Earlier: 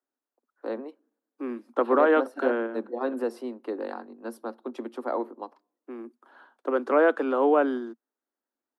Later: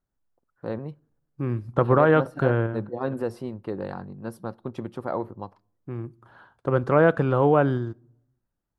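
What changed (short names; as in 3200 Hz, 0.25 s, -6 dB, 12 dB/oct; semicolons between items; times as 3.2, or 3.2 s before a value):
second voice: send on; master: remove steep high-pass 230 Hz 96 dB/oct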